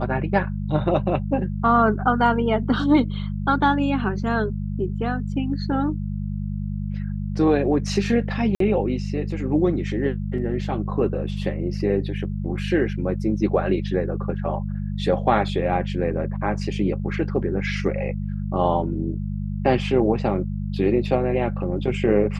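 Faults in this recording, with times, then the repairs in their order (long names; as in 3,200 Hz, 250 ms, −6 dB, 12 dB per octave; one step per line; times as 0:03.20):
mains hum 50 Hz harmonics 4 −27 dBFS
0:08.55–0:08.60: drop-out 53 ms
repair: hum removal 50 Hz, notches 4
repair the gap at 0:08.55, 53 ms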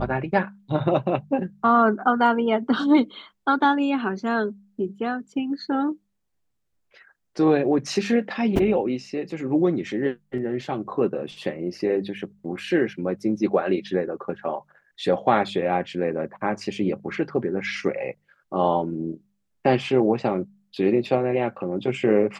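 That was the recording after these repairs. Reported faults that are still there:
none of them is left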